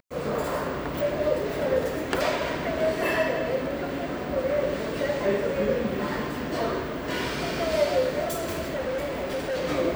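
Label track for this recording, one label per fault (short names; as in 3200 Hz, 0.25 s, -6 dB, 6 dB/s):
8.240000	9.650000	clipped -25.5 dBFS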